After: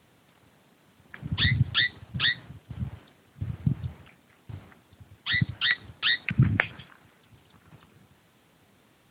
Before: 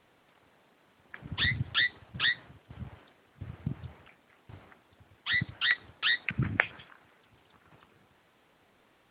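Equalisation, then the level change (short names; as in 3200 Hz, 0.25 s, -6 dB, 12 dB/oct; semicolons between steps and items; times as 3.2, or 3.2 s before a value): HPF 63 Hz; tone controls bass +13 dB, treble +9 dB; low shelf 110 Hz -6 dB; +1.0 dB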